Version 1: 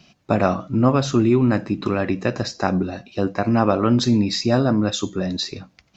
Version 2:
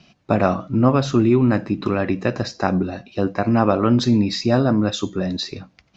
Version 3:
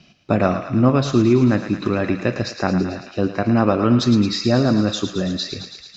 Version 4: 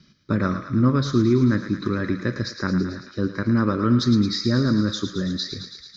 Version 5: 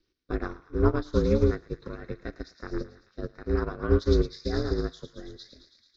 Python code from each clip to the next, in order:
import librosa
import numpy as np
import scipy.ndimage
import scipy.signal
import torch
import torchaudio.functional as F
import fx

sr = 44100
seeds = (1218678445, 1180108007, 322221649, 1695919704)

y1 = fx.air_absorb(x, sr, metres=68.0)
y1 = F.gain(torch.from_numpy(y1), 1.0).numpy()
y2 = fx.peak_eq(y1, sr, hz=870.0, db=-4.5, octaves=0.79)
y2 = fx.echo_thinned(y2, sr, ms=110, feedback_pct=77, hz=770.0, wet_db=-8.0)
y2 = F.gain(torch.from_numpy(y2), 1.0).numpy()
y3 = fx.fixed_phaser(y2, sr, hz=2700.0, stages=6)
y3 = F.gain(torch.from_numpy(y3), -1.5).numpy()
y4 = y3 * np.sin(2.0 * np.pi * 160.0 * np.arange(len(y3)) / sr)
y4 = fx.upward_expand(y4, sr, threshold_db=-30.0, expansion=2.5)
y4 = F.gain(torch.from_numpy(y4), 2.0).numpy()